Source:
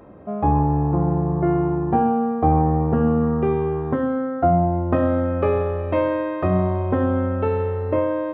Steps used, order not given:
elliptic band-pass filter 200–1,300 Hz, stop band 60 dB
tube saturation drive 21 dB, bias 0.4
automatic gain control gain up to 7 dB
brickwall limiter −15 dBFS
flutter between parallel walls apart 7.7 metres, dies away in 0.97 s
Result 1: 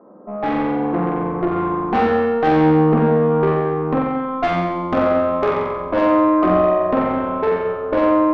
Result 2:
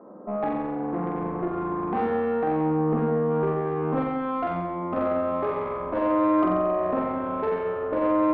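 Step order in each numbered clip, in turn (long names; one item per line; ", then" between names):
elliptic band-pass filter, then tube saturation, then brickwall limiter, then automatic gain control, then flutter between parallel walls
automatic gain control, then brickwall limiter, then elliptic band-pass filter, then tube saturation, then flutter between parallel walls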